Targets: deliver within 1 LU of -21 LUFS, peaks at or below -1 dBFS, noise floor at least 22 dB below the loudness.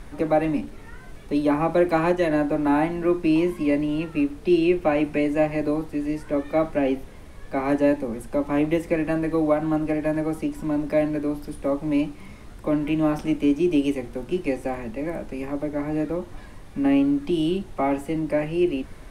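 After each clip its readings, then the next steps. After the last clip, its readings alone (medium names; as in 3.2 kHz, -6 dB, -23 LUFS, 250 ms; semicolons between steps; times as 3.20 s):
noise floor -42 dBFS; noise floor target -46 dBFS; loudness -24.0 LUFS; peak level -8.0 dBFS; loudness target -21.0 LUFS
-> noise print and reduce 6 dB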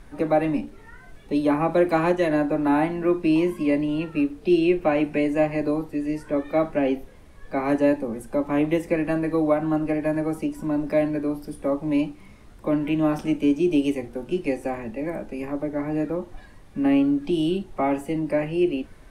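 noise floor -47 dBFS; loudness -24.0 LUFS; peak level -8.5 dBFS; loudness target -21.0 LUFS
-> trim +3 dB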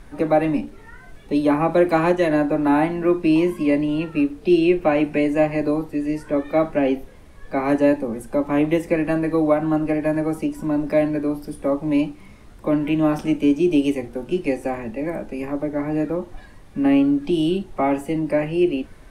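loudness -21.0 LUFS; peak level -5.5 dBFS; noise floor -44 dBFS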